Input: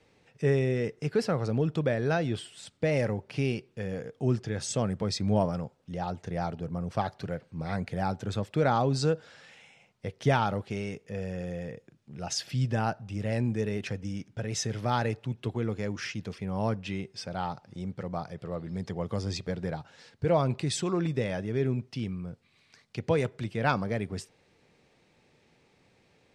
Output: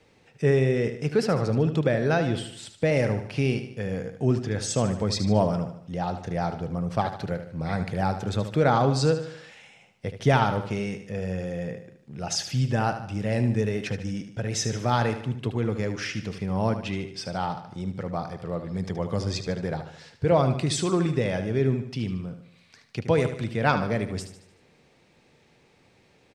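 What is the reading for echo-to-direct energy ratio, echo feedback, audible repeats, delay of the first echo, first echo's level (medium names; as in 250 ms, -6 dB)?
-9.0 dB, 48%, 4, 75 ms, -10.0 dB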